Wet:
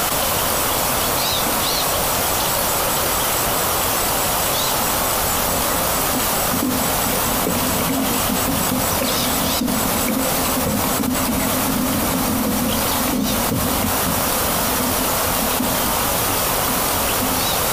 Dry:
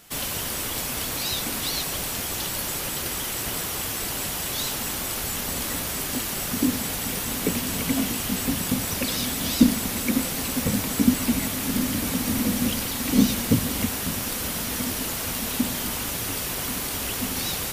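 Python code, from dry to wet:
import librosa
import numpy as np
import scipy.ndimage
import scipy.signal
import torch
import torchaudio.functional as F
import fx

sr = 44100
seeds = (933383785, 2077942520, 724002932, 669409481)

y = fx.band_shelf(x, sr, hz=820.0, db=8.0, octaves=1.7)
y = fx.doubler(y, sr, ms=23.0, db=-11)
y = fx.env_flatten(y, sr, amount_pct=100)
y = y * 10.0 ** (-8.5 / 20.0)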